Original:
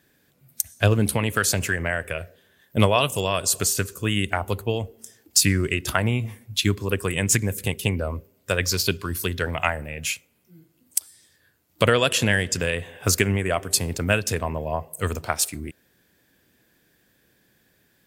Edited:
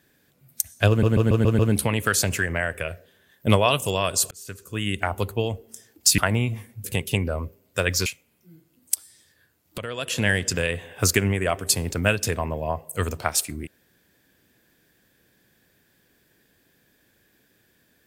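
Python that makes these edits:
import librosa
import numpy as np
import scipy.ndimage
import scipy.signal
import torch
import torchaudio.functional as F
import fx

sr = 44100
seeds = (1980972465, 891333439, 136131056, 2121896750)

y = fx.edit(x, sr, fx.stutter(start_s=0.89, slice_s=0.14, count=6),
    fx.fade_in_span(start_s=3.61, length_s=0.8),
    fx.cut(start_s=5.48, length_s=0.42),
    fx.cut(start_s=6.56, length_s=1.0),
    fx.cut(start_s=8.78, length_s=1.32),
    fx.fade_in_from(start_s=11.82, length_s=0.52, curve='qua', floor_db=-16.0), tone=tone)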